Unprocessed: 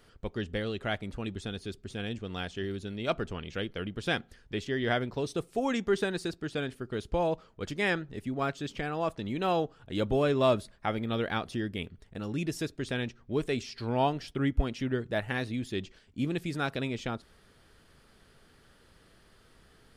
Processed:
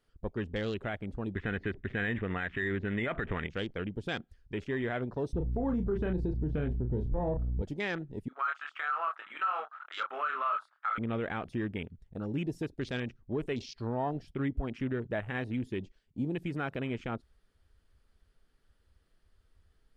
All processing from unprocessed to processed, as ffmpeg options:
-filter_complex "[0:a]asettb=1/sr,asplit=3[s0][s1][s2];[s0]atrim=end=1.354[s3];[s1]atrim=start=1.35:end=3.47,asetpts=PTS-STARTPTS,afade=t=in:d=0.004:c=qsin,afade=t=out:st=2.116:d=0.004:c=qsin,lowpass=f=1900:t=q:w=7,acontrast=78[s4];[s2]atrim=start=3.466[s5];[s3][s4]acrossfade=d=0.004:c1=hsin:c2=qsin[s6];[s6][s5]acrossfade=d=0.004:c1=qsin:c2=hsin,asettb=1/sr,asplit=3[s7][s8][s9];[s7]atrim=end=5.334[s10];[s8]atrim=start=5.33:end=7.62,asetpts=PTS-STARTPTS,afade=t=in:d=0.004:c=qsin,afade=t=out:st=2.286:d=0.004:c=qsin,asplit=2[s11][s12];[s12]adelay=33,volume=0.398[s13];[s11][s13]amix=inputs=2:normalize=0,atrim=end_sample=100989,aeval=exprs='val(0)+0.00562*(sin(2*PI*60*n/s)+sin(2*PI*2*60*n/s)/2+sin(2*PI*3*60*n/s)/3+sin(2*PI*4*60*n/s)/4+sin(2*PI*5*60*n/s)/5)':c=same,aemphasis=mode=reproduction:type=riaa[s14];[s9]atrim=start=7.616[s15];[s10][s14]acrossfade=d=0.004:c1=hsin:c2=qsin[s16];[s16][s15]acrossfade=d=0.004:c1=qsin:c2=hsin,asettb=1/sr,asplit=3[s17][s18][s19];[s17]atrim=end=8.284[s20];[s18]atrim=start=8.28:end=10.98,asetpts=PTS-STARTPTS,afade=t=in:d=0.004:c=qsin,afade=t=out:st=2.696:d=0.004:c=qsin,highpass=f=1300:t=q:w=11,aemphasis=mode=reproduction:type=50fm,asplit=2[s21][s22];[s22]adelay=27,volume=0.562[s23];[s21][s23]amix=inputs=2:normalize=0,atrim=end_sample=119070[s24];[s19]atrim=start=10.976[s25];[s20][s24]acrossfade=d=0.004:c1=hsin:c2=qsin[s26];[s26][s25]acrossfade=d=0.004:c1=qsin:c2=hsin,alimiter=limit=0.0668:level=0:latency=1:release=78,afwtdn=0.00631"

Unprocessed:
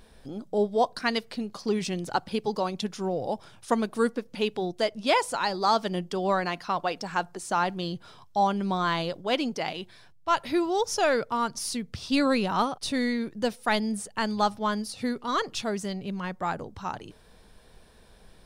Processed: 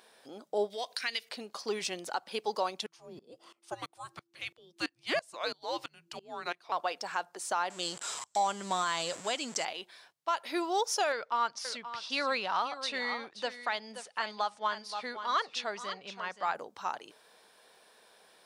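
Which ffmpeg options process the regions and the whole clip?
-filter_complex "[0:a]asettb=1/sr,asplit=3[s0][s1][s2];[s0]atrim=end=0.704[s3];[s1]atrim=start=0.7:end=1.29,asetpts=PTS-STARTPTS,afade=t=in:d=0.004:c=qsin,afade=t=out:st=0.586:d=0.004:c=qsin,highshelf=f=1600:t=q:w=1.5:g=11,bandreject=f=7900:w=27,acompressor=threshold=0.02:ratio=3:attack=3.2:release=140:knee=1:detection=peak[s4];[s2]atrim=start=1.286[s5];[s3][s4]acrossfade=d=0.004:c1=hsin:c2=qsin[s6];[s6][s5]acrossfade=d=0.004:c1=qsin:c2=hsin,asettb=1/sr,asplit=3[s7][s8][s9];[s7]atrim=end=2.864[s10];[s8]atrim=start=2.86:end=6.72,asetpts=PTS-STARTPTS,afade=t=in:d=0.004:c=qsin,afade=t=out:st=3.856:d=0.004:c=qsin,afreqshift=-340,aeval=exprs='val(0)*pow(10,-23*if(lt(mod(-3*n/s,1),2*abs(-3)/1000),1-mod(-3*n/s,1)/(2*abs(-3)/1000),(mod(-3*n/s,1)-2*abs(-3)/1000)/(1-2*abs(-3)/1000))/20)':c=same[s11];[s9]atrim=start=6.716[s12];[s10][s11]acrossfade=d=0.004:c1=hsin:c2=qsin[s13];[s13][s12]acrossfade=d=0.004:c1=qsin:c2=hsin,asettb=1/sr,asplit=3[s14][s15][s16];[s14]atrim=end=7.704[s17];[s15]atrim=start=7.7:end=9.65,asetpts=PTS-STARTPTS,afade=t=in:d=0.004:c=qsin,afade=t=out:st=1.946:d=0.004:c=qsin,aeval=exprs='val(0)+0.5*0.0141*sgn(val(0))':c=same,lowpass=f=7600:t=q:w=9.4,asubboost=boost=7:cutoff=190[s18];[s16]atrim=start=9.646[s19];[s17][s18]acrossfade=d=0.004:c1=hsin:c2=qsin[s20];[s20][s19]acrossfade=d=0.004:c1=qsin:c2=hsin,asettb=1/sr,asplit=3[s21][s22][s23];[s21]atrim=end=11.124[s24];[s22]atrim=start=11.12:end=16.55,asetpts=PTS-STARTPTS,afade=t=in:d=0.004:c=qsin,afade=t=out:st=5.426:d=0.004:c=qsin,lowpass=4800,equalizer=f=320:t=o:w=1.7:g=-7,aecho=1:1:526:0.251,atrim=end_sample=239463[s25];[s23]atrim=start=16.546[s26];[s24][s25]acrossfade=d=0.004:c1=hsin:c2=qsin[s27];[s27][s26]acrossfade=d=0.004:c1=qsin:c2=hsin,highpass=540,alimiter=limit=0.1:level=0:latency=1:release=239"

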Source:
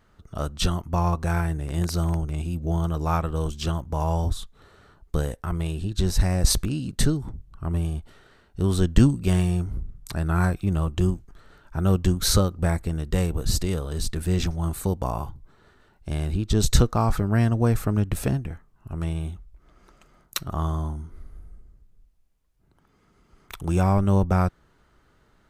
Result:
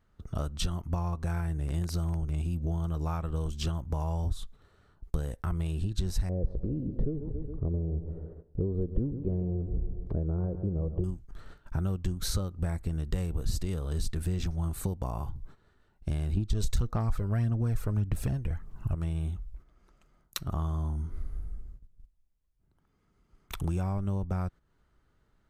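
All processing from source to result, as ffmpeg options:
-filter_complex "[0:a]asettb=1/sr,asplit=3[s0][s1][s2];[s0]atrim=end=6.294[s3];[s1]atrim=start=6.29:end=11.04,asetpts=PTS-STARTPTS,afade=t=in:d=0.004:c=qsin,afade=t=out:st=4.746:d=0.004:c=qsin,lowpass=f=480:t=q:w=4.2,aecho=1:1:138|276|414|552|690:0.2|0.0998|0.0499|0.0249|0.0125,atrim=end_sample=209475[s4];[s2]atrim=start=11.036[s5];[s3][s4]acrossfade=d=0.004:c1=hsin:c2=qsin[s6];[s6][s5]acrossfade=d=0.004:c1=qsin:c2=hsin,asettb=1/sr,asplit=3[s7][s8][s9];[s7]atrim=end=16.374[s10];[s8]atrim=start=16.37:end=18.95,asetpts=PTS-STARTPTS,afade=t=in:d=0.004:c=qsin,afade=t=out:st=2.576:d=0.004:c=qsin,aphaser=in_gain=1:out_gain=1:delay=2.1:decay=0.46:speed=1.7:type=sinusoidal,acontrast=77[s11];[s9]atrim=start=18.946[s12];[s10][s11]acrossfade=d=0.004:c1=hsin:c2=qsin[s13];[s13][s12]acrossfade=d=0.004:c1=qsin:c2=hsin,acompressor=threshold=0.0251:ratio=6,lowshelf=f=160:g=7,agate=range=0.251:threshold=0.00631:ratio=16:detection=peak"

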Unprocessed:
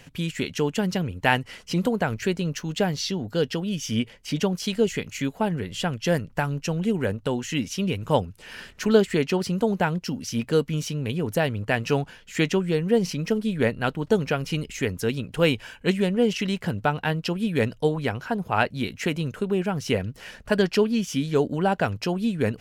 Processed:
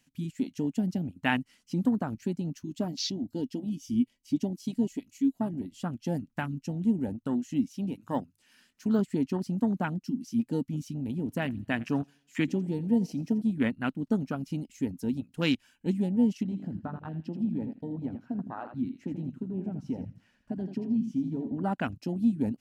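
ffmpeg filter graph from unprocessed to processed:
-filter_complex "[0:a]asettb=1/sr,asplit=3[s0][s1][s2];[s0]atrim=end=2.644[s3];[s1]atrim=start=2.64:end=5.77,asetpts=PTS-STARTPTS,afade=t=in:d=0.004:c=qsin,afade=t=out:st=3.126:d=0.004:c=qsin,equalizer=f=1400:t=o:w=1.3:g=-6.5,aecho=1:1:3.1:0.37,atrim=end_sample=138033[s4];[s2]atrim=start=5.766[s5];[s3][s4]acrossfade=d=0.004:c1=hsin:c2=qsin[s6];[s6][s5]acrossfade=d=0.004:c1=qsin:c2=hsin,asettb=1/sr,asplit=3[s7][s8][s9];[s7]atrim=end=7.684[s10];[s8]atrim=start=7.68:end=8.99,asetpts=PTS-STARTPTS,afade=t=in:d=0.004:c=qsin,afade=t=out:st=1.306:d=0.004:c=qsin,deesser=0.7,lowshelf=f=170:g=-6.5,bandreject=f=50:t=h:w=6,bandreject=f=100:t=h:w=6,bandreject=f=150:t=h:w=6[s11];[s9]atrim=start=8.986[s12];[s10][s11]acrossfade=d=0.004:c1=hsin:c2=qsin[s13];[s13][s12]acrossfade=d=0.004:c1=qsin:c2=hsin,asettb=1/sr,asplit=3[s14][s15][s16];[s14]atrim=end=11.044[s17];[s15]atrim=start=11.04:end=13.42,asetpts=PTS-STARTPTS,afade=t=in:d=0.004:c=qsin,afade=t=out:st=2.376:d=0.004:c=qsin,highpass=45,aecho=1:1:85|170|255|340:0.126|0.0579|0.0266|0.0123,atrim=end_sample=104958[s18];[s16]atrim=start=13.416[s19];[s17][s18]acrossfade=d=0.004:c1=hsin:c2=qsin[s20];[s20][s19]acrossfade=d=0.004:c1=qsin:c2=hsin,asettb=1/sr,asplit=3[s21][s22][s23];[s21]atrim=end=16.434[s24];[s22]atrim=start=16.43:end=21.64,asetpts=PTS-STARTPTS,afade=t=in:d=0.004:c=qsin,afade=t=out:st=5.206:d=0.004:c=qsin,lowpass=f=1300:p=1,acompressor=threshold=0.0562:ratio=3:attack=3.2:release=140:knee=1:detection=peak,aecho=1:1:82|164|246|328:0.422|0.131|0.0405|0.0126,atrim=end_sample=229761[s25];[s23]atrim=start=21.636[s26];[s24][s25]acrossfade=d=0.004:c1=hsin:c2=qsin[s27];[s27][s26]acrossfade=d=0.004:c1=qsin:c2=hsin,bass=f=250:g=-14,treble=f=4000:g=9,afwtdn=0.0398,lowshelf=f=340:t=q:w=3:g=9,volume=0.473"

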